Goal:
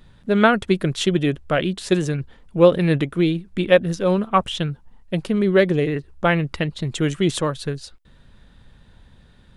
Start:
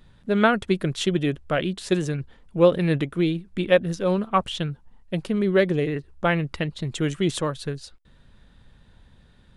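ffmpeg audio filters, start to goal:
-filter_complex "[0:a]asettb=1/sr,asplit=3[s0][s1][s2];[s0]atrim=end=4.074[s3];[s1]atrim=start=4.07:end=4.57,asetpts=PTS-STARTPTS,afade=t=in:d=0.004:c=qsin,afade=t=out:st=0.496:d=0.004:c=qsin,bandreject=f=4400:w=11[s4];[s2]atrim=start=4.566[s5];[s3][s4]acrossfade=d=0.004:c1=hsin:c2=qsin[s6];[s6][s5]acrossfade=d=0.004:c1=qsin:c2=hsin,volume=1.5"

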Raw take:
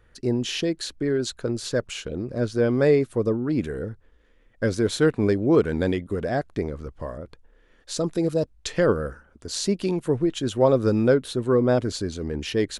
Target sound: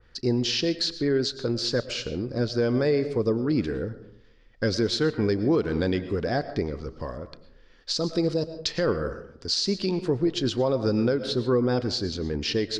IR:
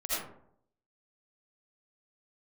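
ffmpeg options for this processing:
-filter_complex "[0:a]lowpass=f=4900:t=q:w=4.8,bandreject=f=620:w=14,asplit=2[s0][s1];[1:a]atrim=start_sample=2205,adelay=32[s2];[s1][s2]afir=irnorm=-1:irlink=0,volume=0.112[s3];[s0][s3]amix=inputs=2:normalize=0,alimiter=limit=0.188:level=0:latency=1:release=195,adynamicequalizer=threshold=0.00562:dfrequency=2500:dqfactor=0.7:tfrequency=2500:tqfactor=0.7:attack=5:release=100:ratio=0.375:range=1.5:mode=cutabove:tftype=highshelf"

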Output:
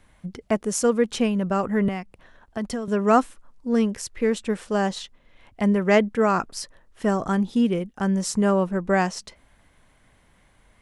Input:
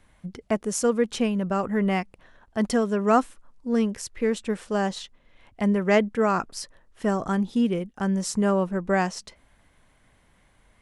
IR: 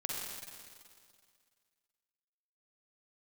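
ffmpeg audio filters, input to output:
-filter_complex "[0:a]asettb=1/sr,asplit=3[s0][s1][s2];[s0]atrim=end=1.884[s3];[s1]atrim=start=1.88:end=2.88,asetpts=PTS-STARTPTS,afade=t=in:d=0.004:c=qsin,afade=t=out:st=0.996:d=0.004:c=qsin,acrossover=split=120[s4][s5];[s5]acompressor=threshold=0.0355:ratio=6[s6];[s4][s6]amix=inputs=2:normalize=0[s7];[s2]atrim=start=2.876[s8];[s3][s7]acrossfade=d=0.004:c1=hsin:c2=qsin[s9];[s9][s8]acrossfade=d=0.004:c1=qsin:c2=hsin,volume=1.26"

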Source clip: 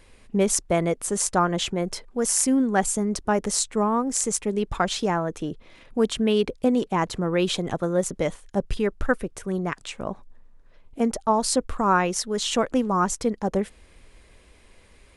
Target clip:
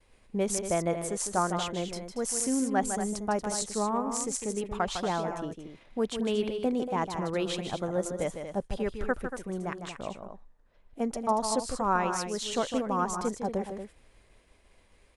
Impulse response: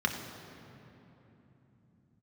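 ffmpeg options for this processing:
-af "agate=range=0.0224:threshold=0.00316:ratio=3:detection=peak,equalizer=f=750:w=1.5:g=4,aecho=1:1:154.5|233.2:0.398|0.316,volume=0.376"

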